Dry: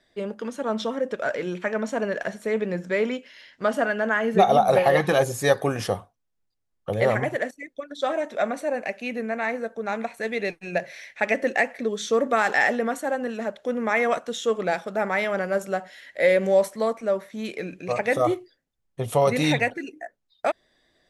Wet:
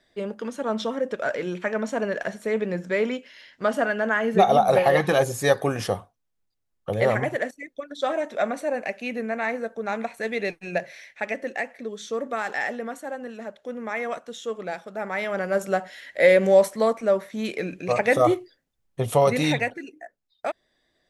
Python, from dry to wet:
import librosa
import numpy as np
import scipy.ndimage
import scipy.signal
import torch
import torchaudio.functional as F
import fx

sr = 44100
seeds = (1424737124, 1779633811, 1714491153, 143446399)

y = fx.gain(x, sr, db=fx.line((10.71, 0.0), (11.41, -7.0), (14.92, -7.0), (15.71, 3.0), (19.01, 3.0), (19.9, -4.5)))